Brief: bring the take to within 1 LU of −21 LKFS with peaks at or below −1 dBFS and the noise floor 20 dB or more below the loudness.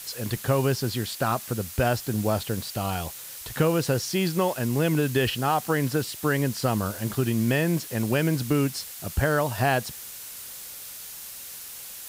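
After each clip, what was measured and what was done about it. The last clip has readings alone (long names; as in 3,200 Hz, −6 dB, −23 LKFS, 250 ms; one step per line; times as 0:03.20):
background noise floor −40 dBFS; target noise floor −46 dBFS; integrated loudness −26.0 LKFS; sample peak −10.5 dBFS; target loudness −21.0 LKFS
→ broadband denoise 6 dB, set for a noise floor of −40 dBFS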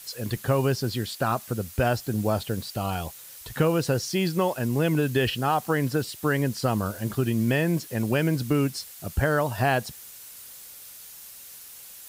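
background noise floor −45 dBFS; target noise floor −46 dBFS
→ broadband denoise 6 dB, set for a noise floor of −45 dBFS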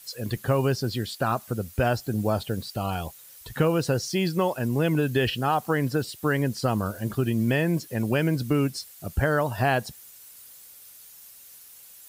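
background noise floor −49 dBFS; integrated loudness −26.0 LKFS; sample peak −10.5 dBFS; target loudness −21.0 LKFS
→ level +5 dB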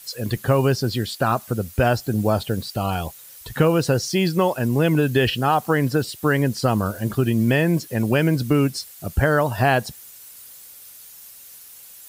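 integrated loudness −21.0 LKFS; sample peak −5.5 dBFS; background noise floor −44 dBFS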